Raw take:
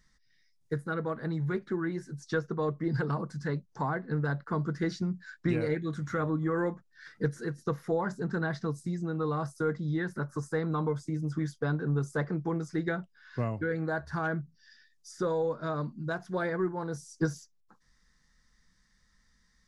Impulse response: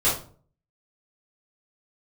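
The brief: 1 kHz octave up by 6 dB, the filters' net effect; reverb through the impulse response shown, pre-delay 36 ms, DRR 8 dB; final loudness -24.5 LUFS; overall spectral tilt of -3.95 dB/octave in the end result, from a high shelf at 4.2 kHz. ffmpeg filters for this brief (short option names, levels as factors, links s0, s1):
-filter_complex "[0:a]equalizer=f=1000:t=o:g=7,highshelf=f=4200:g=6.5,asplit=2[s0][s1];[1:a]atrim=start_sample=2205,adelay=36[s2];[s1][s2]afir=irnorm=-1:irlink=0,volume=0.0794[s3];[s0][s3]amix=inputs=2:normalize=0,volume=2"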